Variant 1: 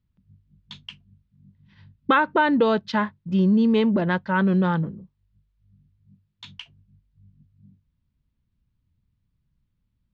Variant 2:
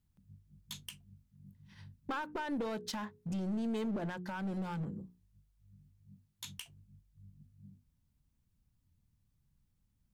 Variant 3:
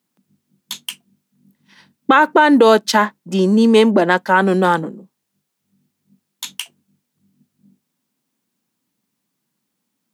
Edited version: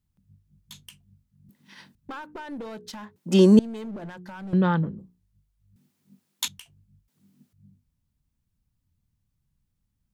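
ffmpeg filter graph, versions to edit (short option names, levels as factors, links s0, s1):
-filter_complex "[2:a]asplit=4[s0][s1][s2][s3];[1:a]asplit=6[s4][s5][s6][s7][s8][s9];[s4]atrim=end=1.492[s10];[s0]atrim=start=1.488:end=1.952[s11];[s5]atrim=start=1.948:end=3.162[s12];[s1]atrim=start=3.158:end=3.592[s13];[s6]atrim=start=3.588:end=4.532[s14];[0:a]atrim=start=4.528:end=4.992[s15];[s7]atrim=start=4.988:end=5.762[s16];[s2]atrim=start=5.758:end=6.482[s17];[s8]atrim=start=6.478:end=7.082[s18];[s3]atrim=start=7.078:end=7.532[s19];[s9]atrim=start=7.528[s20];[s10][s11]acrossfade=d=0.004:c1=hsin:c2=hsin[s21];[s21][s12]acrossfade=d=0.004:c1=hsin:c2=hsin[s22];[s22][s13]acrossfade=d=0.004:c1=hsin:c2=hsin[s23];[s23][s14]acrossfade=d=0.004:c1=hsin:c2=hsin[s24];[s24][s15]acrossfade=d=0.004:c1=hsin:c2=hsin[s25];[s25][s16]acrossfade=d=0.004:c1=hsin:c2=hsin[s26];[s26][s17]acrossfade=d=0.004:c1=hsin:c2=hsin[s27];[s27][s18]acrossfade=d=0.004:c1=hsin:c2=hsin[s28];[s28][s19]acrossfade=d=0.004:c1=hsin:c2=hsin[s29];[s29][s20]acrossfade=d=0.004:c1=hsin:c2=hsin"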